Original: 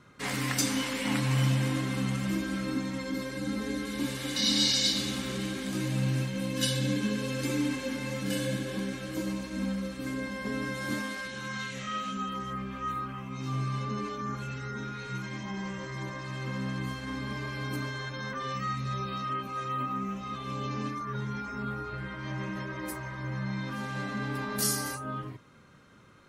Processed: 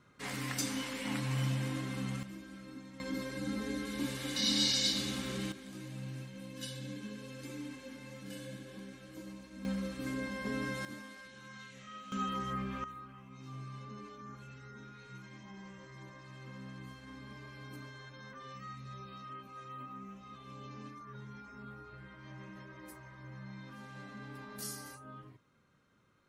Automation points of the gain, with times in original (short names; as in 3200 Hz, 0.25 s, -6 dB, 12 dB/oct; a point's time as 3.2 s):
-7.5 dB
from 2.23 s -17 dB
from 3 s -4.5 dB
from 5.52 s -14.5 dB
from 9.65 s -3.5 dB
from 10.85 s -14.5 dB
from 12.12 s -1.5 dB
from 12.84 s -14 dB